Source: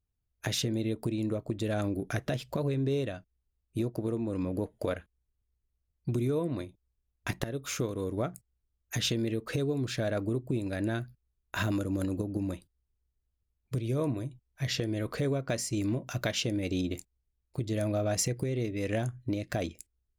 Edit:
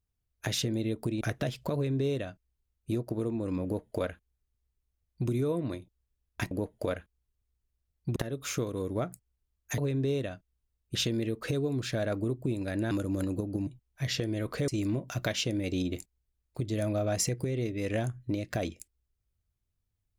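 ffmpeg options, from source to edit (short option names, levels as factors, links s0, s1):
-filter_complex "[0:a]asplit=9[s0][s1][s2][s3][s4][s5][s6][s7][s8];[s0]atrim=end=1.212[s9];[s1]atrim=start=2.078:end=7.382[s10];[s2]atrim=start=4.508:end=6.162[s11];[s3]atrim=start=7.378:end=9.002[s12];[s4]atrim=start=2.608:end=3.782[s13];[s5]atrim=start=8.998:end=10.962[s14];[s6]atrim=start=11.718:end=12.482[s15];[s7]atrim=start=14.268:end=15.282[s16];[s8]atrim=start=15.668[s17];[s9][s10]acrossfade=d=0.004:c1=hsin:c2=hsin[s18];[s18][s11]acrossfade=d=0.004:c1=hsin:c2=hsin[s19];[s19][s12]acrossfade=d=0.004:c1=hsin:c2=hsin[s20];[s20][s13]acrossfade=d=0.004:c1=hsin:c2=hsin[s21];[s21][s14]acrossfade=d=0.004:c1=hsin:c2=hsin[s22];[s22][s15]acrossfade=d=0.004:c1=hsin:c2=hsin[s23];[s23][s16]acrossfade=d=0.004:c1=hsin:c2=hsin[s24];[s24][s17]acrossfade=d=0.004:c1=hsin:c2=hsin"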